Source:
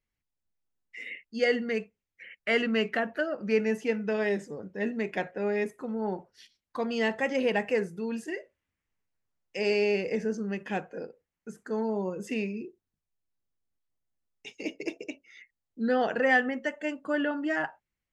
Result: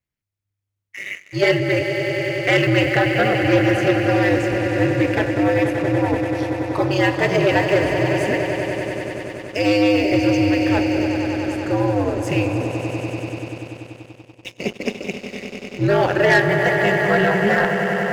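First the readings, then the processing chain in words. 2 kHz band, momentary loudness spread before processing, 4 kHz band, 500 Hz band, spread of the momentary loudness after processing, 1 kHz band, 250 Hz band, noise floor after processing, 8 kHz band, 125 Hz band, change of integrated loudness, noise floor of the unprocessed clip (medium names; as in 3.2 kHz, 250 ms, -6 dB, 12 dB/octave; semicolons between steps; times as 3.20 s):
+11.5 dB, 16 LU, +12.5 dB, +11.0 dB, 13 LU, +12.5 dB, +12.5 dB, -74 dBFS, +14.0 dB, +22.5 dB, +11.0 dB, under -85 dBFS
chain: ring modulator 100 Hz; echo with a slow build-up 96 ms, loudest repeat 5, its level -11.5 dB; waveshaping leveller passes 2; trim +6 dB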